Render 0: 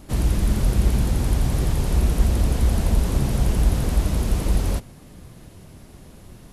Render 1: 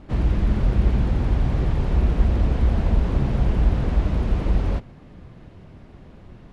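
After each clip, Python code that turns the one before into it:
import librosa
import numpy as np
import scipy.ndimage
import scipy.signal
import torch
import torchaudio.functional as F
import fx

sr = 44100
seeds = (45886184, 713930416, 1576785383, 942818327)

y = scipy.signal.sosfilt(scipy.signal.butter(2, 2600.0, 'lowpass', fs=sr, output='sos'), x)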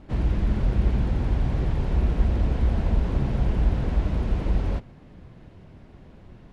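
y = fx.notch(x, sr, hz=1200.0, q=23.0)
y = y * librosa.db_to_amplitude(-3.0)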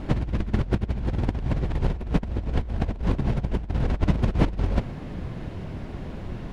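y = fx.over_compress(x, sr, threshold_db=-28.0, ratio=-0.5)
y = y * librosa.db_to_amplitude(5.5)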